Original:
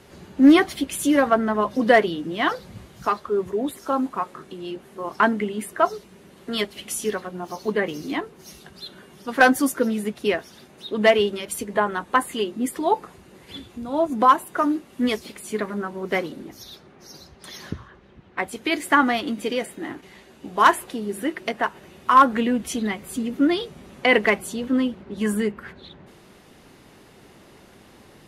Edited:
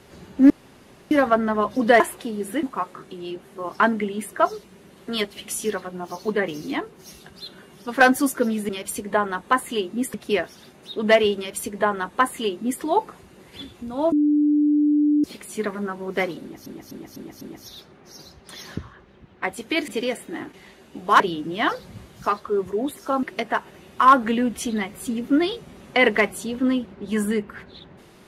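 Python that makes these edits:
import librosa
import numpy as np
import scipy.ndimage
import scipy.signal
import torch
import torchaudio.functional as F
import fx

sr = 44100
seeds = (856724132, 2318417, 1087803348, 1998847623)

y = fx.edit(x, sr, fx.room_tone_fill(start_s=0.5, length_s=0.61),
    fx.swap(start_s=2.0, length_s=2.03, other_s=20.69, other_length_s=0.63),
    fx.duplicate(start_s=11.32, length_s=1.45, to_s=10.09),
    fx.bleep(start_s=14.07, length_s=1.12, hz=296.0, db=-15.0),
    fx.repeat(start_s=16.36, length_s=0.25, count=5),
    fx.cut(start_s=18.83, length_s=0.54), tone=tone)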